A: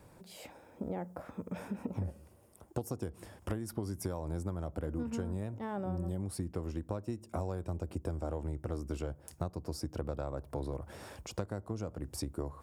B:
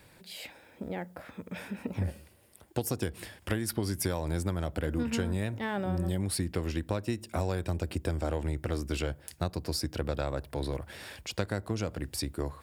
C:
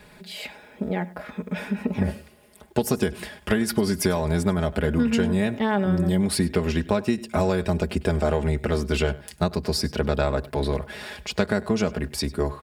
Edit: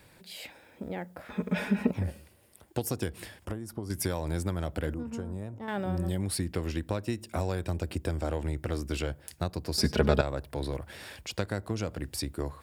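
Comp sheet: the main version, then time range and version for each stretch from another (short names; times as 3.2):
B
1.3–1.91 from C
3.45–3.9 from A
4.94–5.68 from A
9.78–10.21 from C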